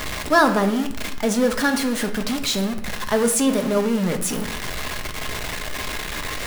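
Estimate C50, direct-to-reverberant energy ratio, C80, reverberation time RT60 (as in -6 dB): 11.0 dB, 5.0 dB, 14.0 dB, 0.75 s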